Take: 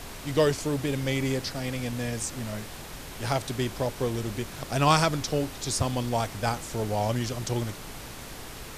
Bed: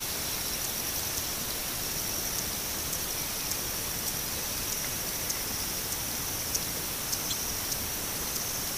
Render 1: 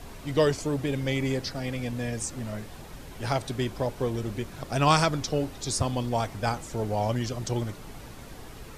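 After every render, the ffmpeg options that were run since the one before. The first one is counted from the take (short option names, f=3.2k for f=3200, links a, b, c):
-af "afftdn=nr=8:nf=-41"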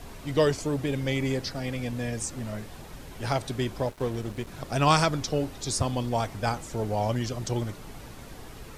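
-filter_complex "[0:a]asettb=1/sr,asplit=3[a][b][c];[a]atrim=end=3.874[d];[b]atrim=start=3.87:end=4.47,asetpts=PTS-STARTPTS,afade=t=in:d=0.004:c=qsin,afade=t=out:st=0.596:d=0.004:c=qsin,aeval=exprs='sgn(val(0))*max(abs(val(0))-0.00668,0)':c=same[e];[c]atrim=start=4.466[f];[d][e]acrossfade=d=0.004:c1=hsin:c2=qsin[g];[g][f]acrossfade=d=0.004:c1=qsin:c2=hsin"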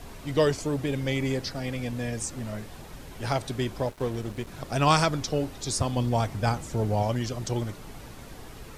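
-filter_complex "[0:a]asettb=1/sr,asplit=3[a][b][c];[a]atrim=end=5.964[d];[b]atrim=start=5.96:end=7.03,asetpts=PTS-STARTPTS,afade=t=in:d=0.004:c=qsin,afade=t=out:st=1.066:d=0.004:c=qsin,equalizer=f=110:t=o:w=2.3:g=5.5[e];[c]atrim=start=7.026[f];[d][e]acrossfade=d=0.004:c1=hsin:c2=qsin[g];[g][f]acrossfade=d=0.004:c1=qsin:c2=hsin"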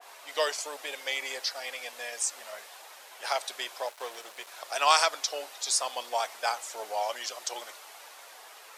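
-af "highpass=f=630:w=0.5412,highpass=f=630:w=1.3066,adynamicequalizer=threshold=0.00501:dfrequency=2200:dqfactor=0.7:tfrequency=2200:tqfactor=0.7:attack=5:release=100:ratio=0.375:range=2:mode=boostabove:tftype=highshelf"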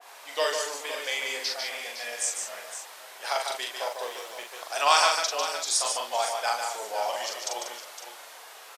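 -filter_complex "[0:a]asplit=2[a][b];[b]adelay=42,volume=-3.5dB[c];[a][c]amix=inputs=2:normalize=0,aecho=1:1:148|511:0.531|0.282"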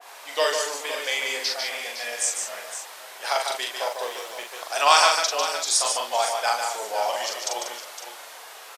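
-af "volume=4dB"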